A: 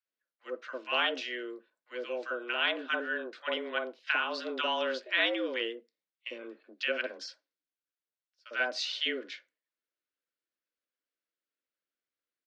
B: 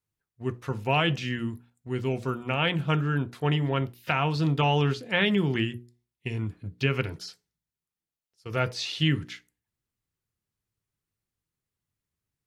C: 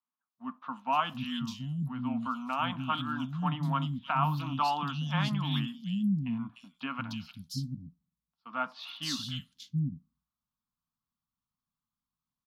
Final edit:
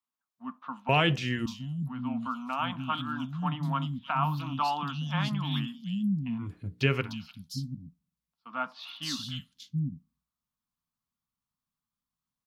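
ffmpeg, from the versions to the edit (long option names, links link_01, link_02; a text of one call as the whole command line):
ffmpeg -i take0.wav -i take1.wav -i take2.wav -filter_complex "[1:a]asplit=2[link_01][link_02];[2:a]asplit=3[link_03][link_04][link_05];[link_03]atrim=end=0.892[link_06];[link_01]atrim=start=0.888:end=1.462[link_07];[link_04]atrim=start=1.458:end=6.54[link_08];[link_02]atrim=start=6.38:end=7.11[link_09];[link_05]atrim=start=6.95[link_10];[link_06][link_07]acrossfade=duration=0.004:curve1=hsin:curve2=hsin[link_11];[link_11][link_08]acrossfade=duration=0.004:curve1=hsin:curve2=hsin[link_12];[link_12][link_09]acrossfade=duration=0.16:curve1=tri:curve2=tri[link_13];[link_13][link_10]acrossfade=duration=0.16:curve1=tri:curve2=tri" out.wav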